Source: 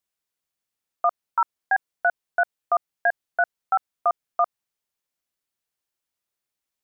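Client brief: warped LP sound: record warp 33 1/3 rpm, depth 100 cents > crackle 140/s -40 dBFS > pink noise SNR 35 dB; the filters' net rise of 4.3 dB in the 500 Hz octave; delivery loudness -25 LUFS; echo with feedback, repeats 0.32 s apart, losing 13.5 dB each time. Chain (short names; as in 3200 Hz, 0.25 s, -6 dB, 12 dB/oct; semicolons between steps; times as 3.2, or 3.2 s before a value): bell 500 Hz +8 dB; feedback echo 0.32 s, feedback 21%, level -13.5 dB; record warp 33 1/3 rpm, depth 100 cents; crackle 140/s -40 dBFS; pink noise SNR 35 dB; gain -1 dB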